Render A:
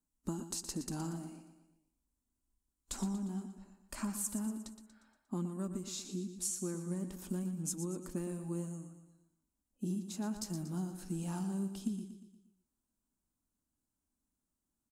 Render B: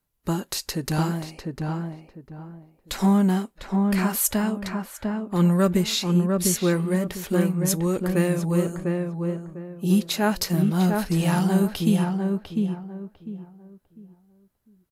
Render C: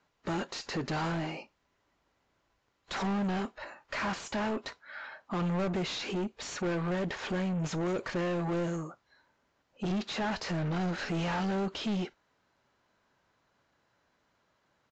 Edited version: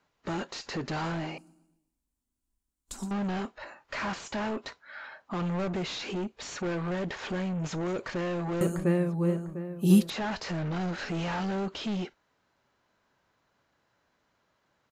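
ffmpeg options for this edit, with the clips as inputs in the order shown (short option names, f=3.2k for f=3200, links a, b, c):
-filter_complex "[2:a]asplit=3[a][b][c];[a]atrim=end=1.382[d];[0:a]atrim=start=1.378:end=3.112[e];[b]atrim=start=3.108:end=8.612[f];[1:a]atrim=start=8.608:end=10.102[g];[c]atrim=start=10.098[h];[d][e]acrossfade=d=0.004:c1=hsin:c2=hsin[i];[i][f]acrossfade=d=0.004:c1=hsin:c2=hsin[j];[j][g]acrossfade=d=0.004:c1=hsin:c2=hsin[k];[k][h]acrossfade=d=0.004:c1=hsin:c2=hsin"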